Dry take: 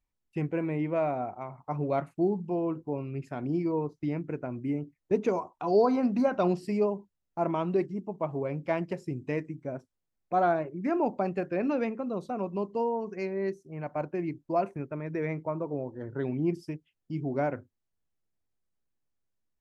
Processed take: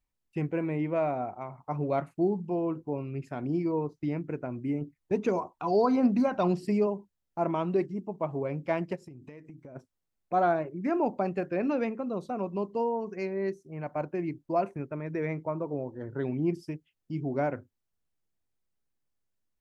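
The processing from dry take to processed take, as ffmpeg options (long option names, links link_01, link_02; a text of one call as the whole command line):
ffmpeg -i in.wav -filter_complex "[0:a]asettb=1/sr,asplit=3[link_01][link_02][link_03];[link_01]atrim=end=4.814[link_04];[link_02]atrim=start=4.81:end=6.87,asetpts=PTS-STARTPTS,afade=type=in:duration=0.004:curve=qsin,afade=type=out:start_time=2.056:duration=0.004:curve=qsin,aphaser=in_gain=1:out_gain=1:delay=1.3:decay=0.32:speed=1.6:type=triangular[link_05];[link_03]atrim=start=6.866[link_06];[link_04][link_05]acrossfade=duration=0.004:curve1=hsin:curve2=qsin[link_07];[link_07][link_06]acrossfade=duration=0.004:curve1=qsin:curve2=hsin,asplit=3[link_08][link_09][link_10];[link_08]afade=type=out:start_time=8.95:duration=0.02[link_11];[link_09]acompressor=threshold=-42dB:ratio=16:attack=3.2:release=140:knee=1:detection=peak,afade=type=in:start_time=8.95:duration=0.02,afade=type=out:start_time=9.75:duration=0.02[link_12];[link_10]afade=type=in:start_time=9.75:duration=0.02[link_13];[link_11][link_12][link_13]amix=inputs=3:normalize=0" out.wav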